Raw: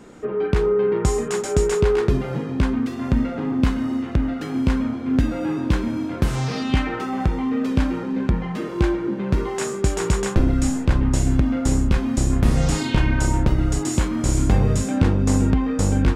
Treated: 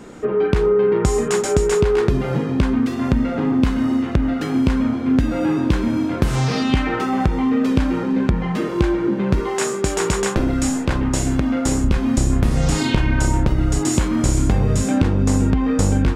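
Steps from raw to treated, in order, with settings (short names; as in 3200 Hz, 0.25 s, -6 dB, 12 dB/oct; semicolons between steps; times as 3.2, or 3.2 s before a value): 9.4–11.84 low shelf 170 Hz -10 dB; compressor, threshold -18 dBFS, peak gain reduction 7.5 dB; gain +5.5 dB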